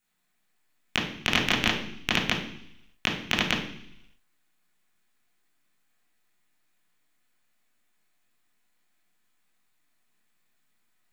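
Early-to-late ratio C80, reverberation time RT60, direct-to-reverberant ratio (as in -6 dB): 10.0 dB, 0.70 s, -5.5 dB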